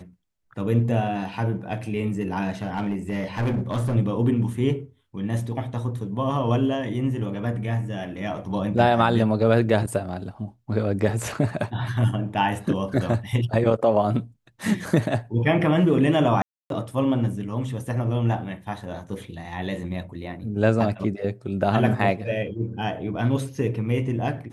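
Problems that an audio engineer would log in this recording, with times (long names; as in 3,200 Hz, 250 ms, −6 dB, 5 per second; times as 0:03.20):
0:02.62–0:03.96: clipping −20.5 dBFS
0:16.42–0:16.70: drop-out 282 ms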